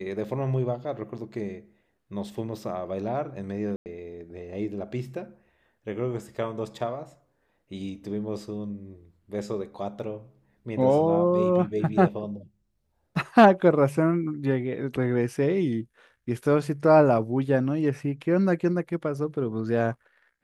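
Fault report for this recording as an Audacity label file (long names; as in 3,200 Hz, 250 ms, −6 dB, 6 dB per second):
3.760000	3.860000	drop-out 99 ms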